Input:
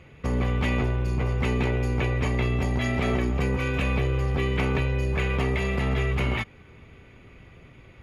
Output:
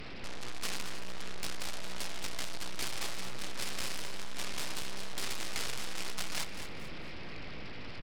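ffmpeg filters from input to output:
-af "aresample=11025,aeval=exprs='abs(val(0))':c=same,aresample=44100,aemphasis=mode=production:type=cd,aeval=exprs='(tanh(100*val(0)+0.75)-tanh(0.75))/100':c=same,aecho=1:1:224|448|672|896:0.316|0.108|0.0366|0.0124,volume=5.96"

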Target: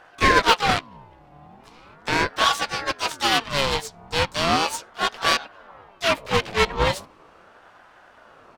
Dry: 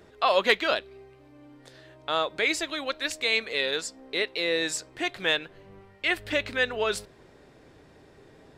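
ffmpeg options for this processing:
-filter_complex "[0:a]aeval=exprs='0.376*(cos(1*acos(clip(val(0)/0.376,-1,1)))-cos(1*PI/2))+0.0473*(cos(8*acos(clip(val(0)/0.376,-1,1)))-cos(8*PI/2))':c=same,asplit=2[s0][s1];[s1]adynamicsmooth=sensitivity=5.5:basefreq=3900,volume=0.708[s2];[s0][s2]amix=inputs=2:normalize=0,asplit=4[s3][s4][s5][s6];[s4]asetrate=37084,aresample=44100,atempo=1.18921,volume=0.447[s7];[s5]asetrate=55563,aresample=44100,atempo=0.793701,volume=0.501[s8];[s6]asetrate=88200,aresample=44100,atempo=0.5,volume=0.141[s9];[s3][s7][s8][s9]amix=inputs=4:normalize=0,aeval=exprs='val(0)*sin(2*PI*790*n/s+790*0.45/0.38*sin(2*PI*0.38*n/s))':c=same"

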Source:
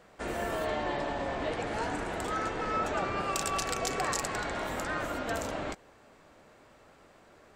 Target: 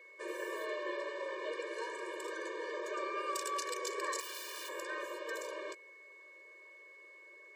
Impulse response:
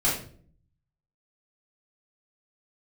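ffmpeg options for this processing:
-filter_complex "[0:a]aeval=exprs='val(0)+0.00316*sin(2*PI*2200*n/s)':c=same,asettb=1/sr,asplit=3[s0][s1][s2];[s0]atrim=end=4.204[s3];[s1]atrim=start=4.2:end=4.69,asetpts=PTS-STARTPTS,afade=t=in:d=0.004:c=qsin,afade=t=out:st=0.486:d=0.004:c=qsin,aeval=exprs='(mod(42.2*val(0)+1,2)-1)/42.2':c=same[s4];[s2]atrim=start=4.686[s5];[s3][s4]acrossfade=d=0.004:c1=hsin:c2=qsin[s6];[s6][s5]acrossfade=d=0.004:c1=qsin:c2=hsin,afftfilt=real='re*eq(mod(floor(b*sr/1024/310),2),1)':imag='im*eq(mod(floor(b*sr/1024/310),2),1)':win_size=1024:overlap=0.75,volume=0.668"

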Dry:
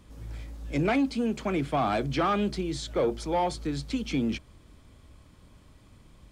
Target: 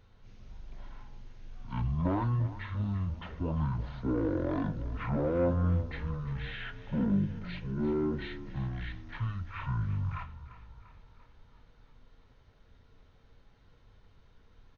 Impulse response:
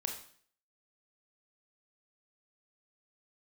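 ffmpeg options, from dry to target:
-filter_complex "[0:a]flanger=delay=4.3:depth=1.1:regen=80:speed=0.32:shape=sinusoidal,asplit=7[s0][s1][s2][s3][s4][s5][s6];[s1]adelay=147,afreqshift=-48,volume=0.178[s7];[s2]adelay=294,afreqshift=-96,volume=0.105[s8];[s3]adelay=441,afreqshift=-144,volume=0.0617[s9];[s4]adelay=588,afreqshift=-192,volume=0.0367[s10];[s5]adelay=735,afreqshift=-240,volume=0.0216[s11];[s6]adelay=882,afreqshift=-288,volume=0.0127[s12];[s0][s7][s8][s9][s10][s11][s12]amix=inputs=7:normalize=0,asetrate=18846,aresample=44100"

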